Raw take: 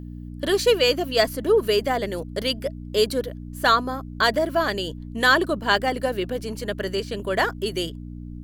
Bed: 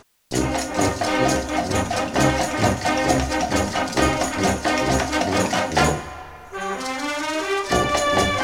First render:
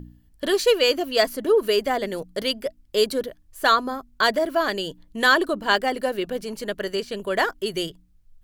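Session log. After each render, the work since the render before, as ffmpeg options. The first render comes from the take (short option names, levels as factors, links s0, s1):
-af "bandreject=f=60:t=h:w=4,bandreject=f=120:t=h:w=4,bandreject=f=180:t=h:w=4,bandreject=f=240:t=h:w=4,bandreject=f=300:t=h:w=4"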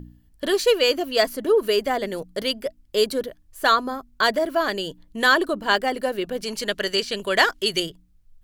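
-filter_complex "[0:a]asettb=1/sr,asplit=3[s0][s1][s2];[s0]atrim=end=6.434[s3];[s1]atrim=start=6.43:end=7.8,asetpts=PTS-STARTPTS,afade=t=in:d=0.004:c=qsin,afade=t=out:st=1.366:d=0.004:c=qsin,equalizer=f=4400:w=0.38:g=10[s4];[s2]atrim=start=7.796[s5];[s3][s4]acrossfade=d=0.004:c1=hsin:c2=qsin[s6];[s6][s5]acrossfade=d=0.004:c1=qsin:c2=hsin"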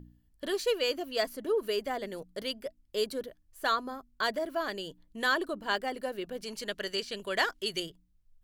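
-af "volume=0.299"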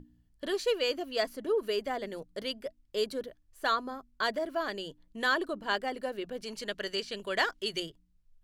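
-af "highshelf=f=12000:g=-12,bandreject=f=60:t=h:w=6,bandreject=f=120:t=h:w=6,bandreject=f=180:t=h:w=6"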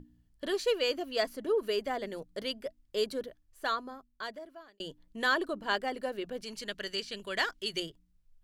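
-filter_complex "[0:a]asettb=1/sr,asplit=3[s0][s1][s2];[s0]atrim=end=6.414[s3];[s1]atrim=start=6.41:end=7.76,asetpts=PTS-STARTPTS,afade=t=in:d=0.004:c=qsin,afade=t=out:st=1.346:d=0.004:c=qsin,equalizer=f=610:w=0.57:g=-5[s4];[s2]atrim=start=7.756[s5];[s3][s4]acrossfade=d=0.004:c1=hsin:c2=qsin[s6];[s6][s5]acrossfade=d=0.004:c1=qsin:c2=hsin,asplit=2[s7][s8];[s7]atrim=end=4.8,asetpts=PTS-STARTPTS,afade=t=out:st=3.2:d=1.6[s9];[s8]atrim=start=4.8,asetpts=PTS-STARTPTS,afade=t=in:d=0.004:c=hsin[s10];[s9][s10]concat=n=2:v=0:a=1"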